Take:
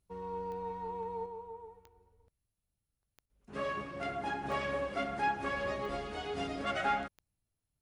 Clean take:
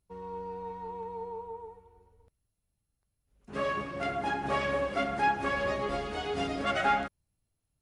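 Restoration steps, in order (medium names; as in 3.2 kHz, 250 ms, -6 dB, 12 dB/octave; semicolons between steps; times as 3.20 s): de-click; interpolate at 1.87 s, 1.1 ms; interpolate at 3.26 s, 35 ms; trim 0 dB, from 1.26 s +5 dB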